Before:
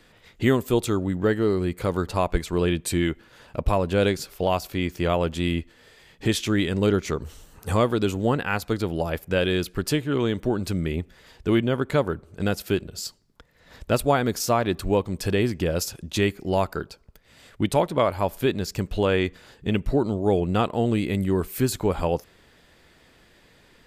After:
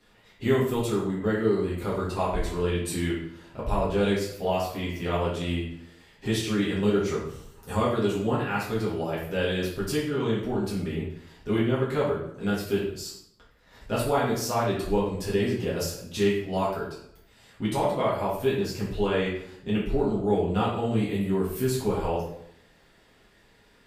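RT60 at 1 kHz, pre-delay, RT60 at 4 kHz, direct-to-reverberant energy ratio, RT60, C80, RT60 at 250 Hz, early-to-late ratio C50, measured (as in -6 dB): 0.70 s, 4 ms, 0.55 s, -9.0 dB, 0.75 s, 7.0 dB, 0.85 s, 3.0 dB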